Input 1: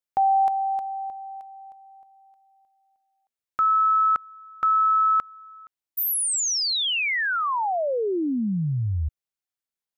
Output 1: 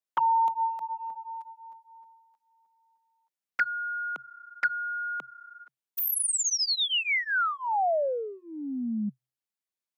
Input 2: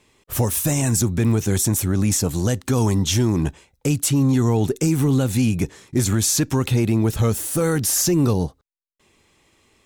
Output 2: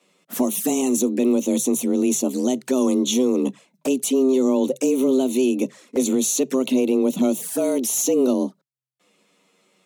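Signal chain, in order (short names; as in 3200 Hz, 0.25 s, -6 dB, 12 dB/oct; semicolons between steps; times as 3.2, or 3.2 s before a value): frequency shift +130 Hz; envelope flanger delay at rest 11 ms, full sweep at -17.5 dBFS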